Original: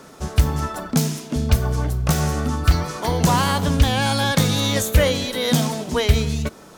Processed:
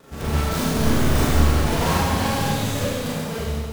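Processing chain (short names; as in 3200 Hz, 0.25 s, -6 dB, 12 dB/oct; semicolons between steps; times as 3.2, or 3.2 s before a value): half-waves squared off; Doppler pass-by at 1.66, 6 m/s, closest 3.5 m; vibrato 1.3 Hz 23 cents; granular stretch 0.55×, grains 99 ms; wavefolder -20.5 dBFS; Schroeder reverb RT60 1.8 s, combs from 28 ms, DRR -8.5 dB; gain -2.5 dB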